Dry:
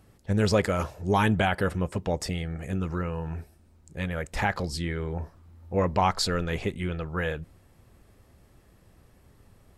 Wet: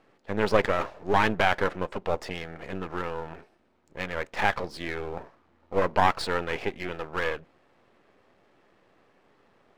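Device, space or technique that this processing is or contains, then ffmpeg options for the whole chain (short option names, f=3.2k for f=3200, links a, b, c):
crystal radio: -af "highpass=340,lowpass=2.9k,aeval=exprs='if(lt(val(0),0),0.251*val(0),val(0))':c=same,volume=6dB"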